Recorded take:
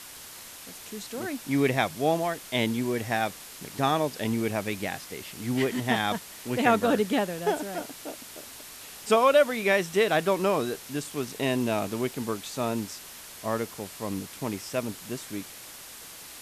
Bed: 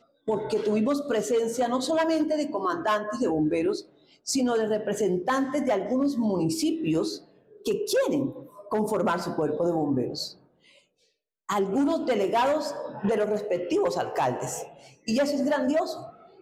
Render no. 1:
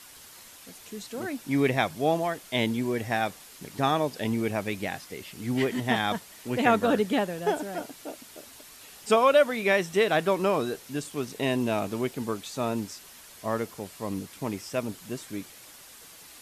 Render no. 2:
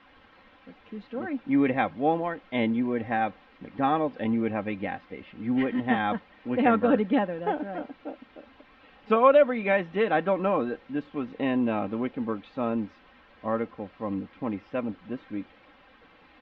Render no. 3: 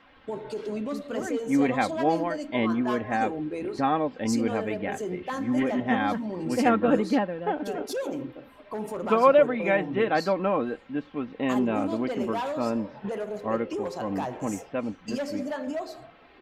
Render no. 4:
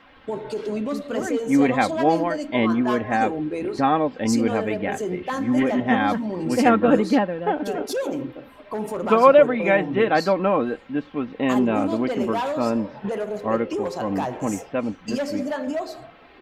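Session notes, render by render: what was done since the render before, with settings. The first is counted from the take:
denoiser 6 dB, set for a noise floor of -45 dBFS
Bessel low-pass 1900 Hz, order 6; comb 3.8 ms, depth 55%
add bed -7.5 dB
gain +5 dB

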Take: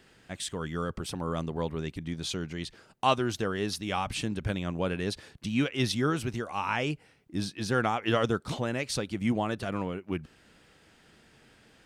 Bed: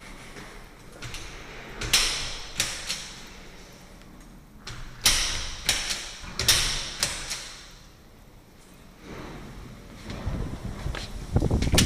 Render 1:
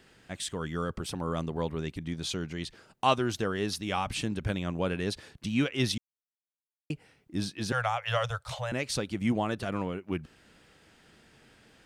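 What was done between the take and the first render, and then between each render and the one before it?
5.98–6.9 mute; 7.72–8.72 elliptic band-stop 120–560 Hz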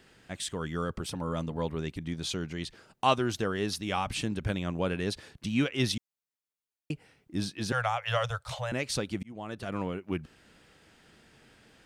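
1.1–1.65 notch comb 380 Hz; 9.23–9.86 fade in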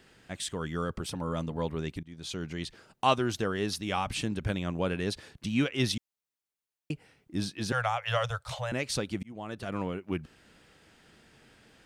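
2.03–2.5 fade in, from -21.5 dB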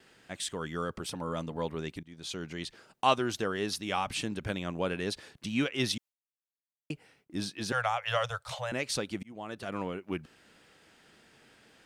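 gate with hold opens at -54 dBFS; low shelf 140 Hz -10.5 dB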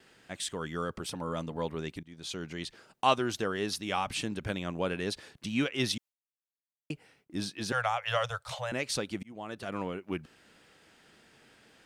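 nothing audible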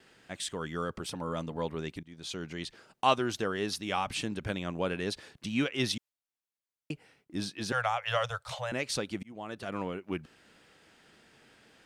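high shelf 9900 Hz -3.5 dB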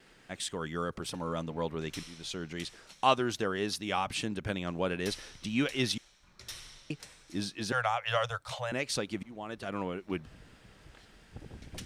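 add bed -24 dB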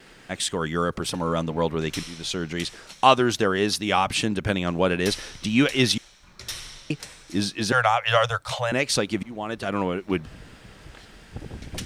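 gain +10 dB; limiter -2 dBFS, peak gain reduction 1.5 dB

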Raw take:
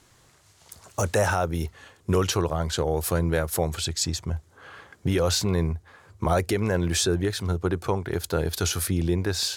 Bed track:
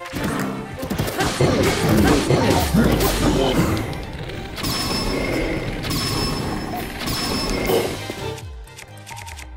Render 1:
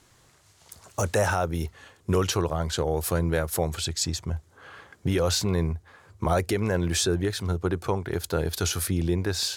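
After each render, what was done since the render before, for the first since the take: gain -1 dB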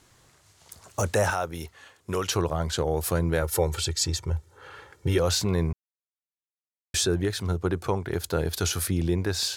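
1.3–2.32 low shelf 390 Hz -9.5 dB; 3.42–5.18 comb 2.2 ms; 5.73–6.94 mute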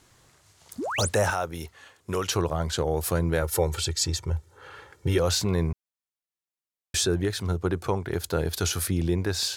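0.78–1.09 painted sound rise 210–11000 Hz -30 dBFS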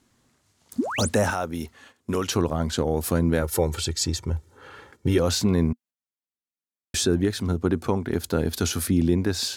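gate -51 dBFS, range -8 dB; bell 240 Hz +14 dB 0.57 oct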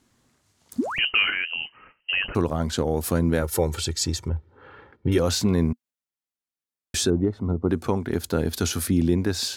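0.98–2.35 inverted band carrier 3000 Hz; 4.28–5.12 air absorption 380 m; 7.1–7.69 polynomial smoothing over 65 samples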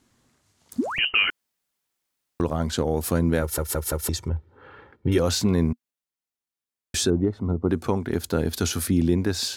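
1.3–2.4 room tone; 3.41 stutter in place 0.17 s, 4 plays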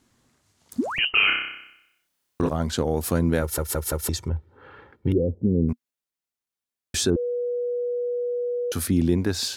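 1.11–2.49 flutter echo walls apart 5.3 m, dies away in 0.79 s; 5.12–5.69 elliptic low-pass 510 Hz, stop band 70 dB; 7.16–8.72 bleep 486 Hz -23.5 dBFS

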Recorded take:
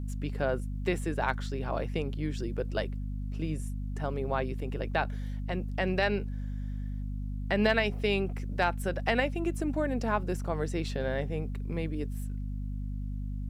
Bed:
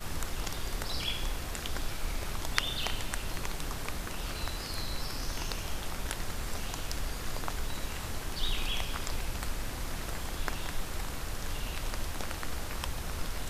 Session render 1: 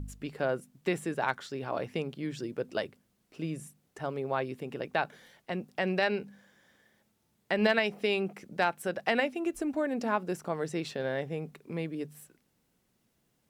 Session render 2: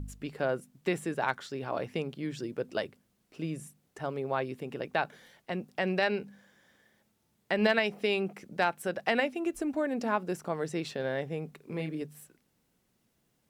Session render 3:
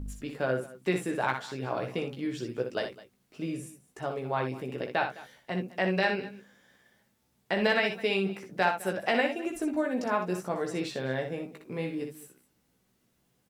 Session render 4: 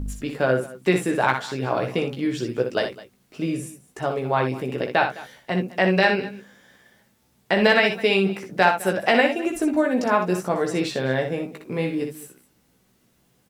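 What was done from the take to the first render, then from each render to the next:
de-hum 50 Hz, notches 5
11.57–12.02 doubler 32 ms -6.5 dB
doubler 16 ms -5.5 dB; tapped delay 61/209 ms -7/-19 dB
gain +8.5 dB

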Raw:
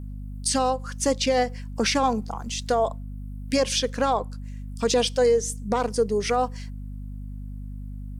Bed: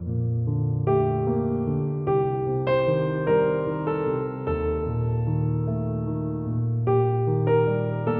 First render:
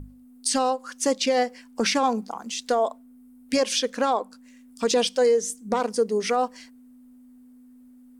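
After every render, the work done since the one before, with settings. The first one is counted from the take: notches 50/100/150/200 Hz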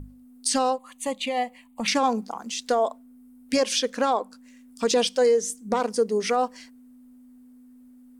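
0.78–1.88 fixed phaser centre 1500 Hz, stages 6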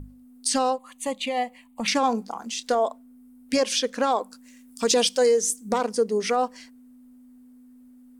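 2.08–2.75 doubler 26 ms -13.5 dB; 4.1–5.78 high shelf 5000 Hz +8.5 dB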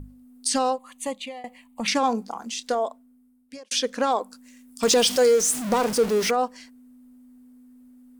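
1.03–1.44 fade out, to -22.5 dB; 2.49–3.71 fade out; 4.83–6.31 zero-crossing step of -25.5 dBFS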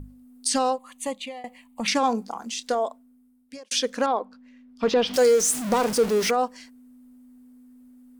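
4.06–5.14 air absorption 300 m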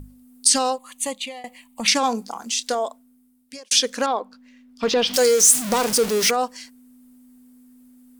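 high shelf 2500 Hz +10.5 dB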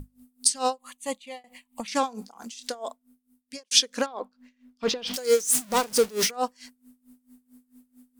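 dB-linear tremolo 4.5 Hz, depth 22 dB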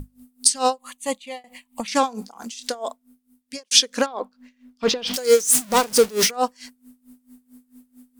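gain +5.5 dB; limiter -2 dBFS, peak gain reduction 1.5 dB

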